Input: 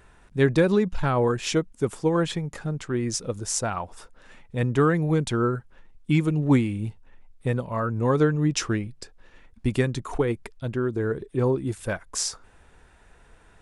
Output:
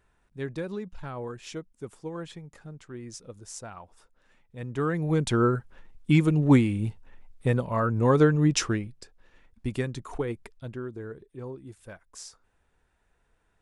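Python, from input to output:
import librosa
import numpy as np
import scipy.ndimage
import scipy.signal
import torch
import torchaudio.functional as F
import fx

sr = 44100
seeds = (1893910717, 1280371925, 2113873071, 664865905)

y = fx.gain(x, sr, db=fx.line((4.56, -14.0), (4.86, -7.0), (5.33, 1.0), (8.57, 1.0), (9.0, -6.5), (10.52, -6.5), (11.35, -16.0)))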